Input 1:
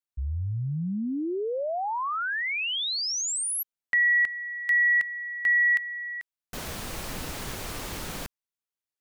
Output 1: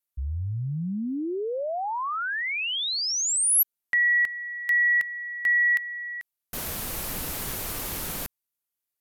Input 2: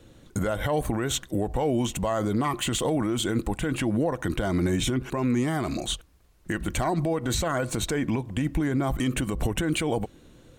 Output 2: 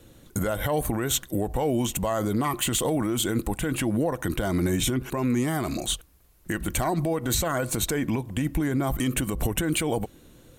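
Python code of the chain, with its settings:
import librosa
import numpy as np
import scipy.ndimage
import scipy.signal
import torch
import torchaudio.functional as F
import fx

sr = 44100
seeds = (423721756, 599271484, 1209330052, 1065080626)

y = fx.peak_eq(x, sr, hz=13000.0, db=13.0, octaves=0.81)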